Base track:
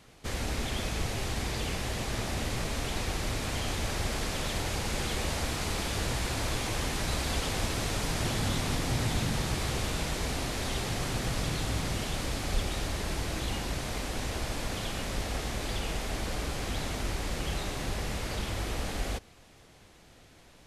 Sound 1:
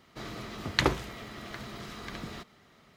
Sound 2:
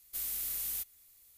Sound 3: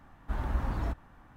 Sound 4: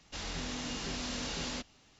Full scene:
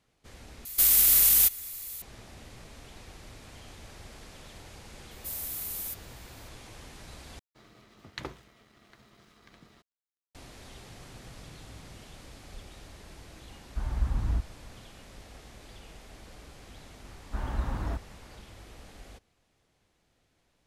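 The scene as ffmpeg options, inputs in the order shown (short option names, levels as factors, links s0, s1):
-filter_complex "[2:a]asplit=2[s0][s1];[3:a]asplit=2[s2][s3];[0:a]volume=0.158[s4];[s0]alimiter=level_in=35.5:limit=0.891:release=50:level=0:latency=1[s5];[s1]tiltshelf=f=970:g=-8.5[s6];[1:a]aeval=exprs='sgn(val(0))*max(abs(val(0))-0.00335,0)':c=same[s7];[s2]asubboost=boost=10:cutoff=220[s8];[s4]asplit=3[s9][s10][s11];[s9]atrim=end=0.654[s12];[s5]atrim=end=1.37,asetpts=PTS-STARTPTS,volume=0.335[s13];[s10]atrim=start=2.016:end=7.394[s14];[s7]atrim=end=2.96,asetpts=PTS-STARTPTS,volume=0.2[s15];[s11]atrim=start=10.346[s16];[s6]atrim=end=1.37,asetpts=PTS-STARTPTS,volume=0.376,afade=t=in:d=0.004:c=hsin,afade=t=out:st=1.366:d=0.004:c=hsin,adelay=5110[s17];[s8]atrim=end=1.36,asetpts=PTS-STARTPTS,volume=0.501,afade=t=in:d=0.004:c=hsin,afade=t=out:st=1.356:d=0.004:c=hsin,adelay=13470[s18];[s3]atrim=end=1.36,asetpts=PTS-STARTPTS,volume=0.944,afade=t=in:d=0.004:c=hsin,afade=t=out:st=1.356:d=0.004:c=hsin,adelay=17040[s19];[s12][s13]acrossfade=d=0.004:c1=hsin:c2=hsin[s20];[s20][s14]acrossfade=d=0.004:c1=hsin:c2=hsin[s21];[s21][s15]acrossfade=d=0.004:c1=hsin:c2=hsin[s22];[s22][s16]acrossfade=d=0.004:c1=hsin:c2=hsin[s23];[s23][s17][s18][s19]amix=inputs=4:normalize=0"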